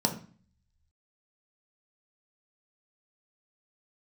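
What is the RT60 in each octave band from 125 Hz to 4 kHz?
0.90 s, 0.65 s, 0.40 s, 0.40 s, 0.45 s, 0.40 s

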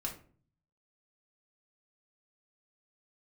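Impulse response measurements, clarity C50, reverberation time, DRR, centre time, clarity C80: 9.5 dB, 0.45 s, -1.0 dB, 18 ms, 14.5 dB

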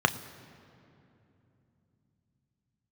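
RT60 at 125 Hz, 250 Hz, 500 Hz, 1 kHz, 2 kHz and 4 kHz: 5.3 s, 4.7 s, 3.2 s, 2.6 s, 2.3 s, 1.7 s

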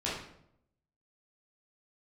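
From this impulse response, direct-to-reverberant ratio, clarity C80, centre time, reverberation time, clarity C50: -8.0 dB, 6.0 dB, 52 ms, 0.70 s, 2.0 dB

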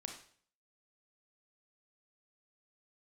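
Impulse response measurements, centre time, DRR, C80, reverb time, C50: 23 ms, 2.5 dB, 10.5 dB, 0.50 s, 6.5 dB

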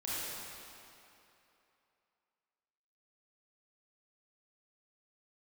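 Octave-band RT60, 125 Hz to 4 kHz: 2.5 s, 2.6 s, 2.9 s, 3.0 s, 2.7 s, 2.3 s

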